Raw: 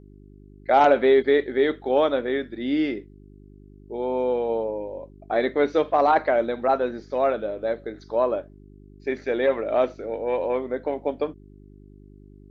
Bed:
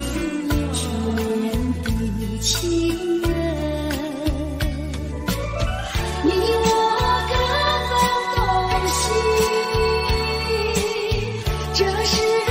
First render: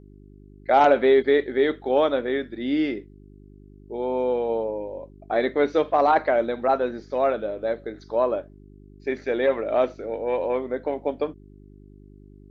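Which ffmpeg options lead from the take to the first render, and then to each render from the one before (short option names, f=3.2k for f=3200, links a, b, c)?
-af anull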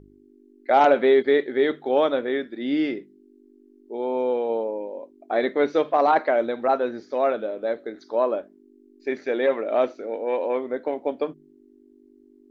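-af "bandreject=f=50:t=h:w=4,bandreject=f=100:t=h:w=4,bandreject=f=150:t=h:w=4,bandreject=f=200:t=h:w=4"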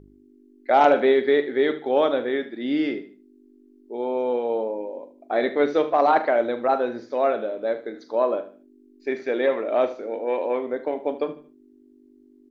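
-filter_complex "[0:a]asplit=2[a][b];[b]adelay=41,volume=-14dB[c];[a][c]amix=inputs=2:normalize=0,aecho=1:1:76|152|228:0.188|0.0584|0.0181"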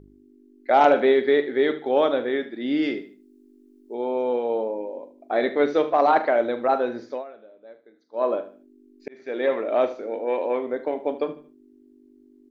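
-filter_complex "[0:a]asettb=1/sr,asplit=3[a][b][c];[a]atrim=end=2.824[d];[b]atrim=start=2.82:end=3.95,asetpts=PTS-STARTPTS,afade=t=in:d=0.004:c=qsin,afade=t=out:st=1.126:d=0.004:c=qsin,highshelf=f=3.8k:g=7.5[e];[c]atrim=start=3.946[f];[d][e]acrossfade=d=0.004:c1=hsin:c2=qsin[g];[g][f]acrossfade=d=0.004:c1=qsin:c2=hsin,asplit=4[h][i][j][k];[h]atrim=end=7.24,asetpts=PTS-STARTPTS,afade=t=out:st=7.1:d=0.14:silence=0.0944061[l];[i]atrim=start=7.24:end=8.12,asetpts=PTS-STARTPTS,volume=-20.5dB[m];[j]atrim=start=8.12:end=9.08,asetpts=PTS-STARTPTS,afade=t=in:d=0.14:silence=0.0944061,afade=t=out:st=0.956:d=0.004:c=hsin[n];[k]atrim=start=9.08,asetpts=PTS-STARTPTS,afade=t=in:d=0.45[o];[l][m][n][o]concat=n=4:v=0:a=1"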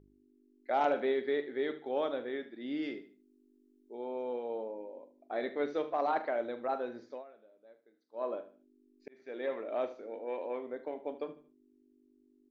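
-af "volume=-13dB"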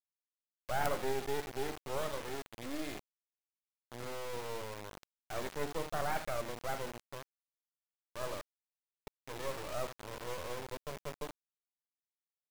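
-af "acrusher=bits=4:dc=4:mix=0:aa=0.000001"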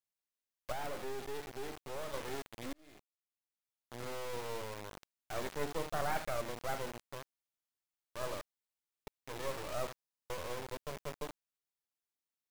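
-filter_complex "[0:a]asettb=1/sr,asplit=3[a][b][c];[a]atrim=end=0.724[d];[b]atrim=start=0.72:end=2.14,asetpts=PTS-STARTPTS,afade=t=in:d=0.004:c=qsin,afade=t=out:st=1.416:d=0.004:c=qsin,aeval=exprs='(tanh(25.1*val(0)+0.4)-tanh(0.4))/25.1':c=same[e];[c]atrim=start=2.136[f];[d][e]acrossfade=d=0.004:c1=hsin:c2=qsin[g];[g][f]acrossfade=d=0.004:c1=qsin:c2=hsin,asplit=14[h][i][j][k][l][m][n][o][p][q][r][s][t][u];[h]atrim=end=2.73,asetpts=PTS-STARTPTS,afade=t=out:st=2.726:d=0.004:c=hsin[v];[i]atrim=start=2.73:end=9.972,asetpts=PTS-STARTPTS,afade=t=in:d=1.22[w];[j]atrim=start=9.938:end=9.972[x];[k]atrim=start=9.938:end=9.972[y];[l]atrim=start=9.938:end=9.972[z];[m]atrim=start=9.938:end=9.972[aa];[n]atrim=start=9.938:end=9.972[ab];[o]atrim=start=9.938:end=9.972[ac];[p]atrim=start=9.938:end=9.972[ad];[q]atrim=start=9.938:end=9.972[ae];[r]atrim=start=9.938:end=9.972[af];[s]atrim=start=9.938:end=9.972[ag];[t]atrim=start=9.938:end=9.972[ah];[u]atrim=start=10.298[ai];[v][w]concat=n=2:v=0:a=1[aj];[aj][x]acrossfade=d=0.004:c1=hsin:c2=hsin[ak];[ak][y]acrossfade=d=0.004:c1=hsin:c2=hsin[al];[al][z]acrossfade=d=0.004:c1=hsin:c2=hsin[am];[am][aa]acrossfade=d=0.004:c1=hsin:c2=hsin[an];[an][ab]acrossfade=d=0.004:c1=hsin:c2=hsin[ao];[ao][ac]acrossfade=d=0.004:c1=hsin:c2=hsin[ap];[ap][ad]acrossfade=d=0.004:c1=hsin:c2=hsin[aq];[aq][ae]acrossfade=d=0.004:c1=hsin:c2=hsin[ar];[ar][af]acrossfade=d=0.004:c1=hsin:c2=hsin[as];[as][ag]acrossfade=d=0.004:c1=hsin:c2=hsin[at];[at][ah]acrossfade=d=0.004:c1=hsin:c2=hsin[au];[au][ai]acrossfade=d=0.004:c1=hsin:c2=hsin"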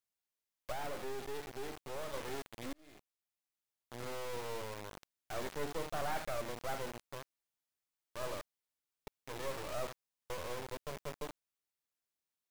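-af "asoftclip=type=tanh:threshold=-26dB"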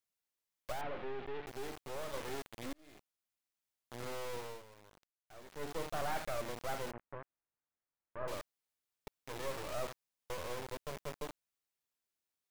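-filter_complex "[0:a]asettb=1/sr,asplit=3[a][b][c];[a]atrim=end=0.814[d];[b]atrim=start=0.81:end=1.47,asetpts=PTS-STARTPTS,afade=t=in:d=0.004:c=qsin,afade=t=out:st=0.656:d=0.004:c=qsin,lowpass=f=3.2k:w=0.5412,lowpass=f=3.2k:w=1.3066[e];[c]atrim=start=1.466[f];[d][e]acrossfade=d=0.004:c1=hsin:c2=qsin[g];[g][f]acrossfade=d=0.004:c1=qsin:c2=hsin,asettb=1/sr,asplit=3[h][i][j];[h]atrim=end=6.914[k];[i]atrim=start=6.91:end=8.28,asetpts=PTS-STARTPTS,afade=t=in:d=0.004:c=qsin,afade=t=out:st=1.366:d=0.004:c=qsin,lowpass=f=1.9k:w=0.5412,lowpass=f=1.9k:w=1.3066[l];[j]atrim=start=8.276[m];[k][l]acrossfade=d=0.004:c1=hsin:c2=qsin[n];[n][m]acrossfade=d=0.004:c1=qsin:c2=hsin,asplit=3[o][p][q];[o]atrim=end=4.63,asetpts=PTS-STARTPTS,afade=t=out:st=4.22:d=0.41:c=qsin:silence=0.188365[r];[p]atrim=start=4.63:end=5.47,asetpts=PTS-STARTPTS,volume=-14.5dB[s];[q]atrim=start=5.47,asetpts=PTS-STARTPTS,afade=t=in:d=0.41:c=qsin:silence=0.188365[t];[r][s][t]concat=n=3:v=0:a=1"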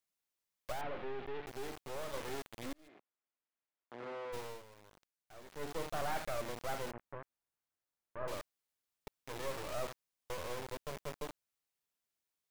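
-filter_complex "[0:a]asplit=3[a][b][c];[a]afade=t=out:st=2.87:d=0.02[d];[b]highpass=230,lowpass=2.2k,afade=t=in:st=2.87:d=0.02,afade=t=out:st=4.32:d=0.02[e];[c]afade=t=in:st=4.32:d=0.02[f];[d][e][f]amix=inputs=3:normalize=0"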